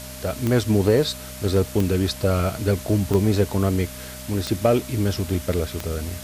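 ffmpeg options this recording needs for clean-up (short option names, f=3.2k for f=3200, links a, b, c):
-af "adeclick=t=4,bandreject=f=63.4:t=h:w=4,bandreject=f=126.8:t=h:w=4,bandreject=f=190.2:t=h:w=4,bandreject=f=253.6:t=h:w=4,bandreject=f=610:w=30,afwtdn=0.013"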